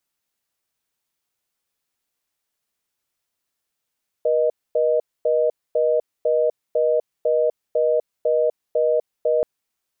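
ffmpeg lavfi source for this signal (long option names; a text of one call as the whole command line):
ffmpeg -f lavfi -i "aevalsrc='0.119*(sin(2*PI*480*t)+sin(2*PI*620*t))*clip(min(mod(t,0.5),0.25-mod(t,0.5))/0.005,0,1)':duration=5.18:sample_rate=44100" out.wav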